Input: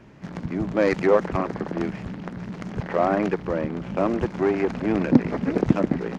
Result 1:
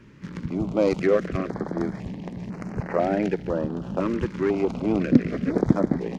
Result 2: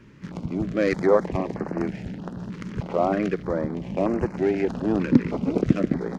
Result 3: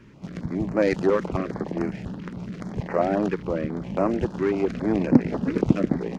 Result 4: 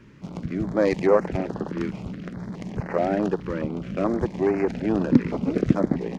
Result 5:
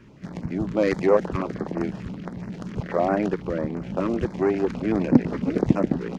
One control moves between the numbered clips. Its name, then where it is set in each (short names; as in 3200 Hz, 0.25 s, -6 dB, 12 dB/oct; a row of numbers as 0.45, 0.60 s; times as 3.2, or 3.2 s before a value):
stepped notch, rate: 2, 3.2, 7.3, 4.7, 12 Hz